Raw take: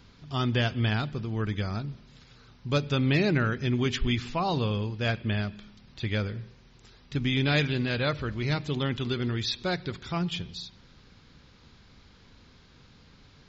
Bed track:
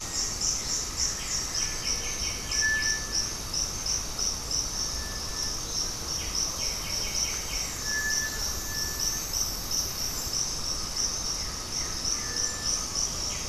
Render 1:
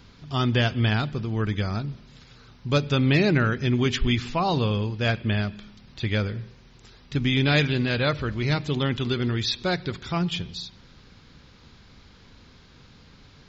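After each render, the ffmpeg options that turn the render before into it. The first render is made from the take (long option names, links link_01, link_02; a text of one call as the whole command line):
ffmpeg -i in.wav -af "volume=4dB" out.wav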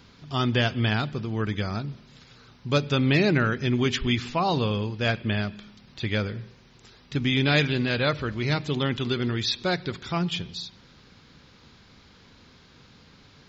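ffmpeg -i in.wav -af "lowshelf=frequency=63:gain=-12" out.wav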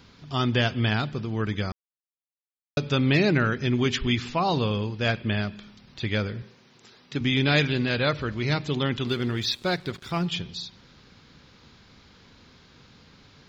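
ffmpeg -i in.wav -filter_complex "[0:a]asettb=1/sr,asplit=3[link_01][link_02][link_03];[link_01]atrim=end=6.424[link_04];[link_02]atrim=start=6.42:end=7.21,asetpts=PTS-STARTPTS,afade=type=in:duration=0.004:curve=qsin,afade=type=out:start_time=0.786:duration=0.004:curve=qsin,highpass=160[link_05];[link_03]atrim=start=7.206[link_06];[link_04][link_05]acrossfade=duration=0.004:curve1=hsin:curve2=qsin[link_07];[link_07][link_06]acrossfade=duration=0.004:curve1=qsin:curve2=hsin,asettb=1/sr,asplit=3[link_08][link_09][link_10];[link_08]atrim=end=9.074[link_11];[link_09]atrim=start=9.07:end=10.27,asetpts=PTS-STARTPTS,afade=type=in:duration=0.004:curve=qsin,afade=type=out:start_time=1.196:duration=0.004:curve=qsin,aeval=exprs='sgn(val(0))*max(abs(val(0))-0.00376,0)':channel_layout=same[link_12];[link_10]atrim=start=10.266[link_13];[link_11][link_12]acrossfade=duration=0.004:curve1=hsin:curve2=qsin[link_14];[link_14][link_13]acrossfade=duration=0.004:curve1=qsin:curve2=hsin,asplit=3[link_15][link_16][link_17];[link_15]atrim=end=1.72,asetpts=PTS-STARTPTS,afade=type=out:start_time=1.716:duration=0.004:curve=hsin[link_18];[link_16]atrim=start=1.72:end=2.77,asetpts=PTS-STARTPTS,volume=0[link_19];[link_17]atrim=start=2.77,asetpts=PTS-STARTPTS,afade=type=in:duration=0.004:curve=hsin[link_20];[link_18][link_19][link_20]concat=n=3:v=0:a=1" out.wav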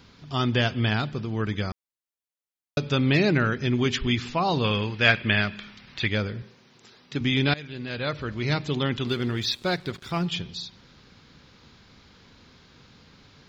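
ffmpeg -i in.wav -filter_complex "[0:a]asettb=1/sr,asplit=3[link_01][link_02][link_03];[link_01]atrim=end=4.644[link_04];[link_02]atrim=start=4.64:end=6.08,asetpts=PTS-STARTPTS,afade=type=in:duration=0.004:curve=qsin,afade=type=out:start_time=1.436:duration=0.004:curve=qsin,equalizer=frequency=2100:width_type=o:width=1.9:gain=10.5[link_05];[link_03]atrim=start=6.076[link_06];[link_04][link_05]acrossfade=duration=0.004:curve1=hsin:curve2=qsin[link_07];[link_07][link_06]acrossfade=duration=0.004:curve1=qsin:curve2=hsin,asplit=2[link_08][link_09];[link_08]atrim=end=7.54,asetpts=PTS-STARTPTS,afade=type=out:start_time=7.536:duration=0.004:curve=hsin:silence=0.0749894[link_10];[link_09]atrim=start=7.54,asetpts=PTS-STARTPTS,afade=type=in:duration=0.96:silence=0.0749894[link_11];[link_10][link_11]concat=n=2:v=0:a=1" out.wav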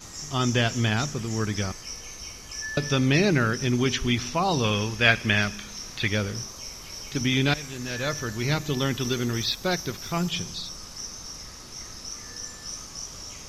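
ffmpeg -i in.wav -i bed.wav -filter_complex "[1:a]volume=-8.5dB[link_01];[0:a][link_01]amix=inputs=2:normalize=0" out.wav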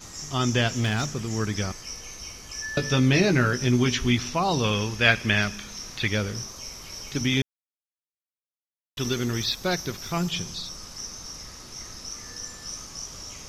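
ffmpeg -i in.wav -filter_complex "[0:a]asettb=1/sr,asplit=3[link_01][link_02][link_03];[link_01]atrim=end=0.714[link_04];[link_02]atrim=start=0.71:end=1.37,asetpts=PTS-STARTPTS,afade=type=in:duration=0.004:curve=qsin,afade=type=out:start_time=0.656:duration=0.004:curve=qsin,asoftclip=type=hard:threshold=-20dB[link_05];[link_03]atrim=start=1.366[link_06];[link_04][link_05]acrossfade=duration=0.004:curve1=hsin:curve2=qsin[link_07];[link_07][link_06]acrossfade=duration=0.004:curve1=qsin:curve2=hsin,asettb=1/sr,asplit=3[link_08][link_09][link_10];[link_08]atrim=end=2.744[link_11];[link_09]atrim=start=2.74:end=4.17,asetpts=PTS-STARTPTS,afade=type=in:duration=0.004:curve=qsin,afade=type=out:start_time=1.426:duration=0.004:curve=qsin,asplit=2[link_12][link_13];[link_13]adelay=16,volume=-6.5dB[link_14];[link_12][link_14]amix=inputs=2:normalize=0,atrim=end_sample=63063[link_15];[link_10]atrim=start=4.166[link_16];[link_11][link_15]acrossfade=duration=0.004:curve1=hsin:curve2=qsin[link_17];[link_17][link_16]acrossfade=duration=0.004:curve1=qsin:curve2=hsin,asplit=3[link_18][link_19][link_20];[link_18]atrim=end=7.42,asetpts=PTS-STARTPTS,afade=type=out:start_time=7.416:duration=0.004:curve=hsin[link_21];[link_19]atrim=start=7.42:end=8.97,asetpts=PTS-STARTPTS,volume=0[link_22];[link_20]atrim=start=8.97,asetpts=PTS-STARTPTS,afade=type=in:duration=0.004:curve=hsin[link_23];[link_21][link_22][link_23]concat=n=3:v=0:a=1" out.wav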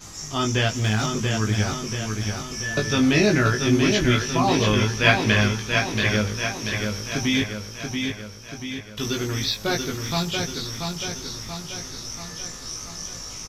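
ffmpeg -i in.wav -filter_complex "[0:a]asplit=2[link_01][link_02];[link_02]adelay=19,volume=-3dB[link_03];[link_01][link_03]amix=inputs=2:normalize=0,aecho=1:1:684|1368|2052|2736|3420|4104|4788:0.562|0.309|0.17|0.0936|0.0515|0.0283|0.0156" out.wav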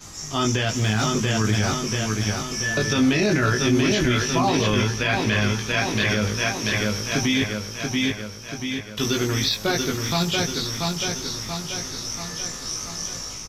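ffmpeg -i in.wav -filter_complex "[0:a]acrossover=split=110[link_01][link_02];[link_02]dynaudnorm=framelen=130:gausssize=5:maxgain=4dB[link_03];[link_01][link_03]amix=inputs=2:normalize=0,alimiter=limit=-11.5dB:level=0:latency=1:release=18" out.wav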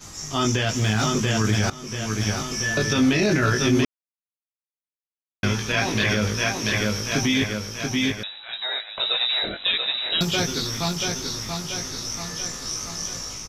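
ffmpeg -i in.wav -filter_complex "[0:a]asettb=1/sr,asplit=3[link_01][link_02][link_03];[link_01]atrim=end=8.234[link_04];[link_02]atrim=start=8.23:end=10.21,asetpts=PTS-STARTPTS,afade=type=in:duration=0.004:curve=qsin,afade=type=out:start_time=1.976:duration=0.004:curve=qsin,lowpass=frequency=3400:width_type=q:width=0.5098,lowpass=frequency=3400:width_type=q:width=0.6013,lowpass=frequency=3400:width_type=q:width=0.9,lowpass=frequency=3400:width_type=q:width=2.563,afreqshift=-4000[link_05];[link_03]atrim=start=10.206[link_06];[link_04][link_05]acrossfade=duration=0.004:curve1=hsin:curve2=qsin[link_07];[link_07][link_06]acrossfade=duration=0.004:curve1=qsin:curve2=hsin,asplit=4[link_08][link_09][link_10][link_11];[link_08]atrim=end=1.7,asetpts=PTS-STARTPTS,afade=type=out:start_time=1.696:duration=0.004:curve=hsin:silence=0.11885[link_12];[link_09]atrim=start=1.7:end=3.85,asetpts=PTS-STARTPTS,afade=type=in:duration=0.52:silence=0.11885,afade=type=out:start_time=2.146:duration=0.004:curve=hsin[link_13];[link_10]atrim=start=3.85:end=5.43,asetpts=PTS-STARTPTS,volume=0[link_14];[link_11]atrim=start=5.43,asetpts=PTS-STARTPTS,afade=type=in:duration=0.004:curve=hsin[link_15];[link_12][link_13][link_14][link_15]concat=n=4:v=0:a=1" out.wav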